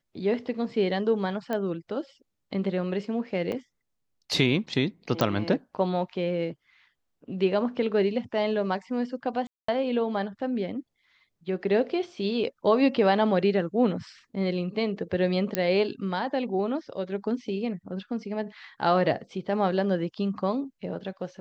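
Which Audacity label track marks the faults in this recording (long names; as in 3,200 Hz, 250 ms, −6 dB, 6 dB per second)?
1.530000	1.530000	click −17 dBFS
3.520000	3.520000	drop-out 2.3 ms
5.210000	5.210000	click −10 dBFS
9.470000	9.680000	drop-out 214 ms
15.550000	15.550000	click −9 dBFS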